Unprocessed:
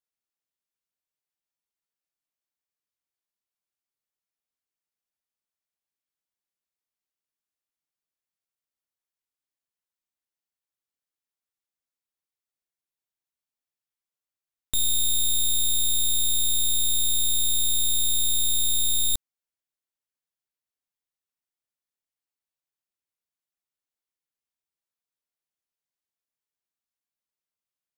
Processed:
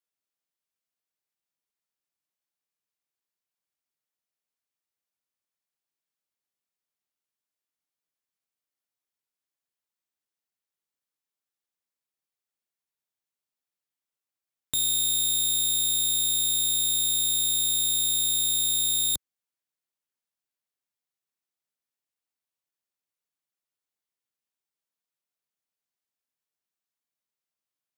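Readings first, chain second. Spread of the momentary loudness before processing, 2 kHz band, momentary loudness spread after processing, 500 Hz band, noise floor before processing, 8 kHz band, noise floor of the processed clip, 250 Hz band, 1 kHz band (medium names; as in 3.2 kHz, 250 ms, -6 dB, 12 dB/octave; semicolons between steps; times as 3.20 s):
2 LU, 0.0 dB, 2 LU, 0.0 dB, under -85 dBFS, 0.0 dB, under -85 dBFS, 0.0 dB, no reading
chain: high-pass 91 Hz 12 dB/octave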